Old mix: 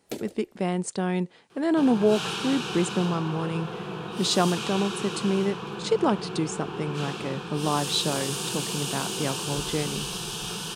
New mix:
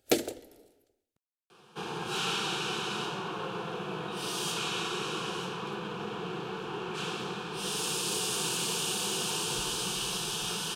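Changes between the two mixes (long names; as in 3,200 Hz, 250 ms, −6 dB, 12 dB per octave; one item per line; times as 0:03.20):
speech: muted
first sound +11.0 dB
master: add low-shelf EQ 210 Hz −7.5 dB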